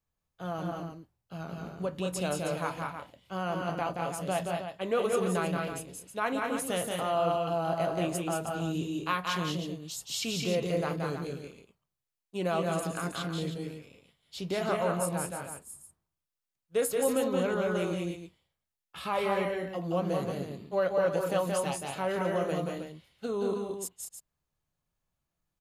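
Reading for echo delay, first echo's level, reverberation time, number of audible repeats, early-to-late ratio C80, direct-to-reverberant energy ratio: 176 ms, −4.0 dB, no reverb audible, 2, no reverb audible, no reverb audible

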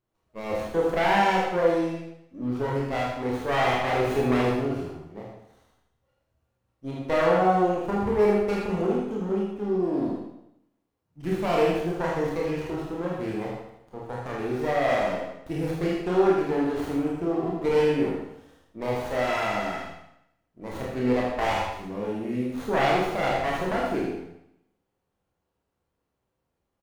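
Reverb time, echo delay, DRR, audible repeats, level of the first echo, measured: 0.80 s, 79 ms, −4.5 dB, 1, −5.5 dB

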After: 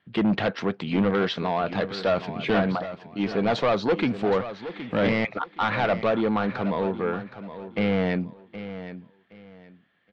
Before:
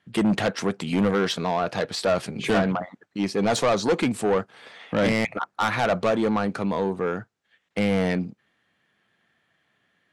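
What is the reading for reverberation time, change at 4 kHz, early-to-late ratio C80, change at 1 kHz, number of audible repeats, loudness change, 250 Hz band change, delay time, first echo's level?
no reverb audible, −2.5 dB, no reverb audible, −0.5 dB, 2, −1.0 dB, −0.5 dB, 769 ms, −12.5 dB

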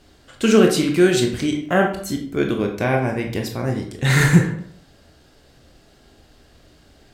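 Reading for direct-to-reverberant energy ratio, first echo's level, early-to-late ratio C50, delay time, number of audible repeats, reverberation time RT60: 2.0 dB, no echo audible, 7.0 dB, no echo audible, no echo audible, 0.60 s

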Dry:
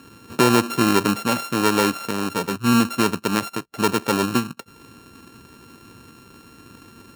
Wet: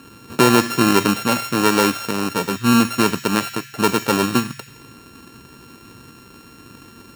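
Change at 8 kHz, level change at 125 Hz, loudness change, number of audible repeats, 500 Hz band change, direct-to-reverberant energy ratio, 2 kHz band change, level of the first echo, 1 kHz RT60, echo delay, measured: +3.5 dB, +2.0 dB, +3.0 dB, no echo audible, +2.5 dB, 8.5 dB, +3.5 dB, no echo audible, 1.1 s, no echo audible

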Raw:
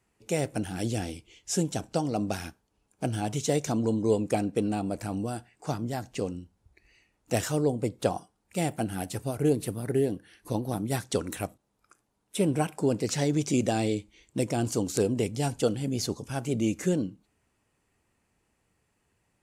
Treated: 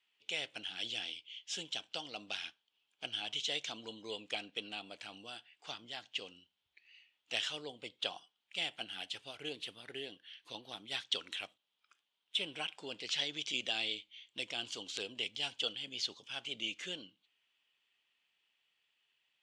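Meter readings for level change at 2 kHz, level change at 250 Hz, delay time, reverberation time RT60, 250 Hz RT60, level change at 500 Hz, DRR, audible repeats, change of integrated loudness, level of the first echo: −1.0 dB, −24.5 dB, no echo audible, no reverb audible, no reverb audible, −19.5 dB, no reverb audible, no echo audible, −10.0 dB, no echo audible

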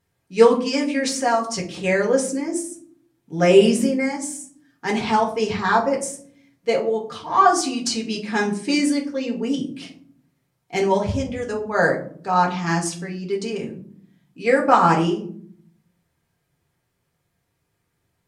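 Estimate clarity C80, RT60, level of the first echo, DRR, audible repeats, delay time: 14.5 dB, 0.55 s, no echo audible, −2.0 dB, no echo audible, no echo audible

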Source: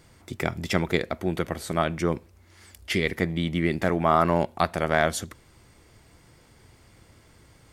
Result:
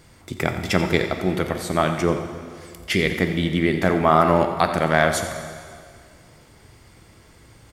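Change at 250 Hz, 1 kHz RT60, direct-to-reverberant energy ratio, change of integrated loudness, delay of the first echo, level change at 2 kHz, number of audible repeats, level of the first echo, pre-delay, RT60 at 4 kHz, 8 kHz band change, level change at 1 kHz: +5.0 dB, 2.1 s, 5.5 dB, +5.0 dB, 88 ms, +5.0 dB, 1, −12.5 dB, 6 ms, 2.0 s, +5.0 dB, +5.0 dB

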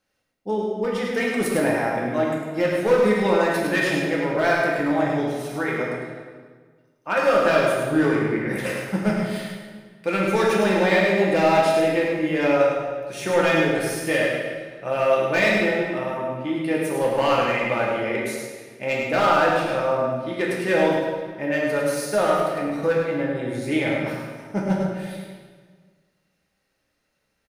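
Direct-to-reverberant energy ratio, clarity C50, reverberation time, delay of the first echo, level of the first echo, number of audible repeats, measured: −4.5 dB, −0.5 dB, 1.6 s, 104 ms, −5.0 dB, 1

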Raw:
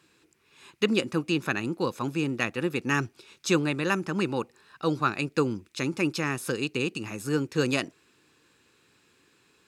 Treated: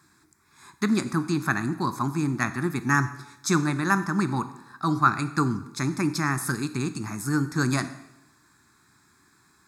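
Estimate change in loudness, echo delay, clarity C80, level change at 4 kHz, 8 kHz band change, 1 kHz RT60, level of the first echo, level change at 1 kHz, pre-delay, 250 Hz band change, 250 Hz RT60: +2.0 dB, no echo audible, 15.5 dB, −3.5 dB, +5.0 dB, 0.85 s, no echo audible, +6.5 dB, 6 ms, +3.0 dB, 0.90 s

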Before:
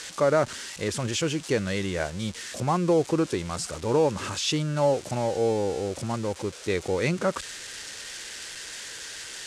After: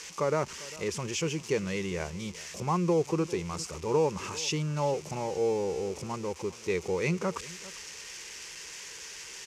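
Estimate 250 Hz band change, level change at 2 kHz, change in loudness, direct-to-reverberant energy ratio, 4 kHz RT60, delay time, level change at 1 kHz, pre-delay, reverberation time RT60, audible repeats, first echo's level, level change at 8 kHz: −4.5 dB, −5.0 dB, −4.5 dB, no reverb audible, no reverb audible, 398 ms, −4.0 dB, no reverb audible, no reverb audible, 1, −19.5 dB, −3.5 dB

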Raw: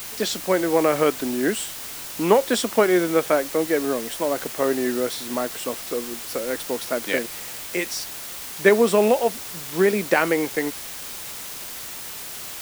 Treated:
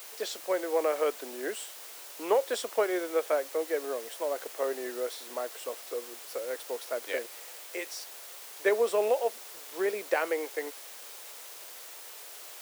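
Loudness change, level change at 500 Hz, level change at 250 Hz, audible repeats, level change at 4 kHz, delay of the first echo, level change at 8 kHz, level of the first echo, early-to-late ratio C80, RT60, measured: −9.5 dB, −8.5 dB, −17.0 dB, no echo audible, −11.0 dB, no echo audible, −11.0 dB, no echo audible, no reverb audible, no reverb audible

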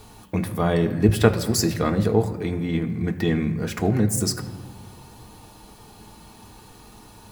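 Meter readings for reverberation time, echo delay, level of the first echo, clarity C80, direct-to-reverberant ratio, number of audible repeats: 1.6 s, no echo audible, no echo audible, 13.5 dB, 3.5 dB, no echo audible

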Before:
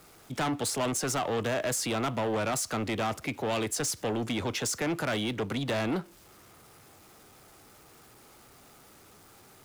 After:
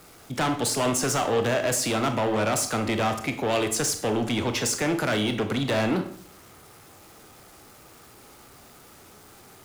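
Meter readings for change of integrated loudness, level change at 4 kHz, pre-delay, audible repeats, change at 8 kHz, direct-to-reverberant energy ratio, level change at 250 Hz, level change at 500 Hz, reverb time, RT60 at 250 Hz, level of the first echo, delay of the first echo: +5.5 dB, +5.5 dB, 26 ms, no echo audible, +5.0 dB, 7.0 dB, +5.5 dB, +5.5 dB, 0.60 s, 0.65 s, no echo audible, no echo audible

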